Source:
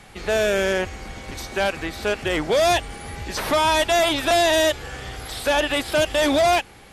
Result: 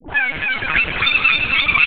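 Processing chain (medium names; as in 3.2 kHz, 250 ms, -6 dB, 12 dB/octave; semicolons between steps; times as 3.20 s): backward echo that repeats 127 ms, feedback 83%, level -13 dB; hum notches 60/120/180/240/300/360/420/480 Hz; in parallel at -3 dB: compression 6:1, threshold -26 dBFS, peak gain reduction 11 dB; on the sum: transient shaper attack +3 dB, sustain -10 dB; wide varispeed 3.71×; frequency shift +100 Hz; comb 6.4 ms, depth 65%; phase dispersion highs, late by 93 ms, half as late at 940 Hz; on a send: feedback echo behind a high-pass 271 ms, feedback 71%, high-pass 1.6 kHz, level -4 dB; on the sum: LPC vocoder at 8 kHz pitch kept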